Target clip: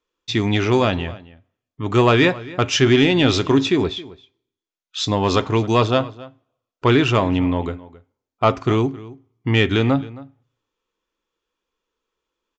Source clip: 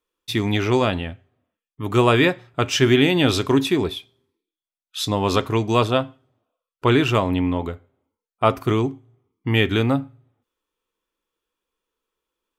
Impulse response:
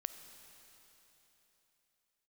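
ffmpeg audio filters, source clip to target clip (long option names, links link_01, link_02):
-filter_complex "[0:a]acontrast=39,asplit=2[link_01][link_02];[link_02]adelay=268.2,volume=-19dB,highshelf=frequency=4000:gain=-6.04[link_03];[link_01][link_03]amix=inputs=2:normalize=0,aresample=16000,aresample=44100,volume=-3dB"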